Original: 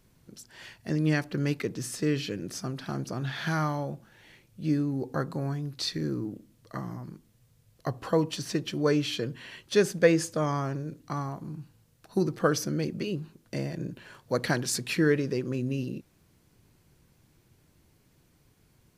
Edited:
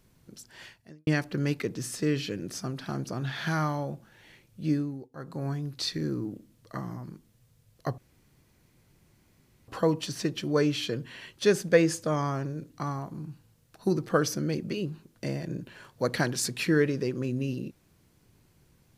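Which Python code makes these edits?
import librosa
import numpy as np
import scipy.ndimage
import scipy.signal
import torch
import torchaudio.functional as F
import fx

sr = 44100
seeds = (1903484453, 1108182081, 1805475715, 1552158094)

y = fx.edit(x, sr, fx.fade_out_span(start_s=0.62, length_s=0.45, curve='qua'),
    fx.fade_down_up(start_s=4.72, length_s=0.77, db=-22.5, fade_s=0.37),
    fx.insert_room_tone(at_s=7.98, length_s=1.7), tone=tone)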